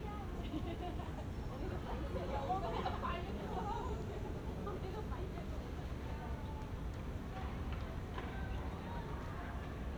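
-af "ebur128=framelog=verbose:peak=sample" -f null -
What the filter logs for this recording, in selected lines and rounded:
Integrated loudness:
  I:         -43.4 LUFS
  Threshold: -53.4 LUFS
Loudness range:
  LRA:         3.1 LU
  Threshold: -63.2 LUFS
  LRA low:   -44.8 LUFS
  LRA high:  -41.7 LUFS
Sample peak:
  Peak:      -25.3 dBFS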